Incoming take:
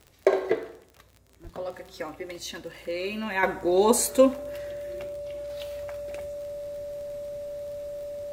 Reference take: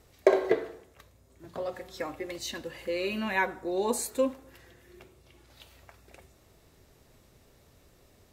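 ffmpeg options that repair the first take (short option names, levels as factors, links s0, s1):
-filter_complex "[0:a]adeclick=t=4,bandreject=f=580:w=30,asplit=3[s0][s1][s2];[s0]afade=t=out:st=1.43:d=0.02[s3];[s1]highpass=f=140:w=0.5412,highpass=f=140:w=1.3066,afade=t=in:st=1.43:d=0.02,afade=t=out:st=1.55:d=0.02[s4];[s2]afade=t=in:st=1.55:d=0.02[s5];[s3][s4][s5]amix=inputs=3:normalize=0,asetnsamples=n=441:p=0,asendcmd='3.43 volume volume -8.5dB',volume=1"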